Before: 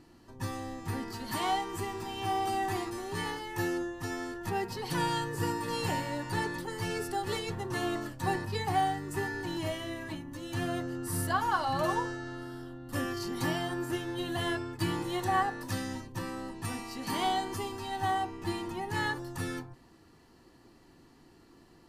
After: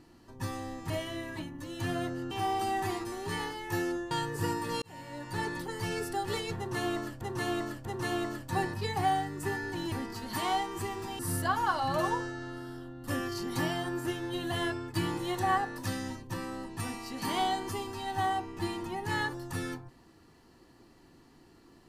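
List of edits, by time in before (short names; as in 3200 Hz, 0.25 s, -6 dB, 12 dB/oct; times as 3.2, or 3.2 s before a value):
0.9–2.17 swap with 9.63–11.04
3.97–5.1 cut
5.81–6.54 fade in
7.56–8.2 loop, 3 plays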